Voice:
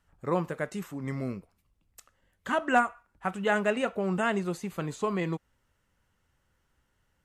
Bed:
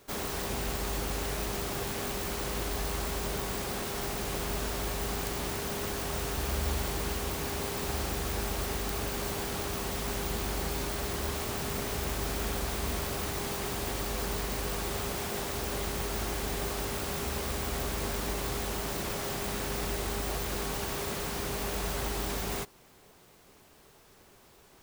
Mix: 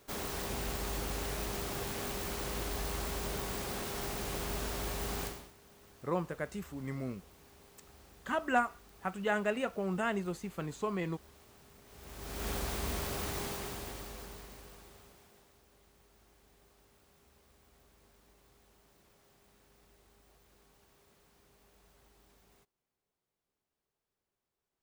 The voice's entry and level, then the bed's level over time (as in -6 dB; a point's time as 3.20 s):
5.80 s, -5.5 dB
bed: 5.25 s -4 dB
5.53 s -25.5 dB
11.83 s -25.5 dB
12.49 s -3.5 dB
13.41 s -3.5 dB
15.65 s -32 dB